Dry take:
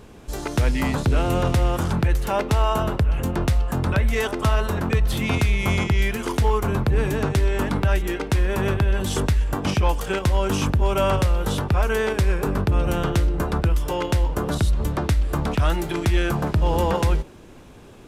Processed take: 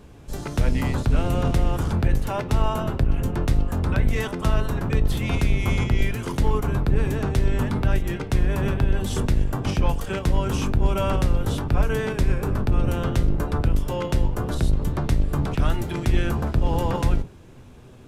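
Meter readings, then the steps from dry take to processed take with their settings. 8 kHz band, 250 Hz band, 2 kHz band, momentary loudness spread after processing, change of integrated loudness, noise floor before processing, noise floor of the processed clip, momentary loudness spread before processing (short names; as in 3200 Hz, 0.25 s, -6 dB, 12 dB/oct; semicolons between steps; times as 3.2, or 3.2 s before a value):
-4.5 dB, -1.0 dB, -4.5 dB, 3 LU, -2.0 dB, -44 dBFS, -45 dBFS, 3 LU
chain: octaver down 1 oct, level +4 dB; flange 0.59 Hz, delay 6.8 ms, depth 1.4 ms, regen +79%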